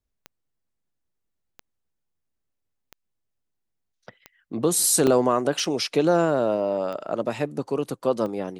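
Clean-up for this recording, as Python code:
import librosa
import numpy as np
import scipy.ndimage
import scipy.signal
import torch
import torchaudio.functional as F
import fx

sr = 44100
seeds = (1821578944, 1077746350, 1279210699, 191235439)

y = fx.fix_declick_ar(x, sr, threshold=10.0)
y = fx.fix_interpolate(y, sr, at_s=(5.07, 5.65), length_ms=2.8)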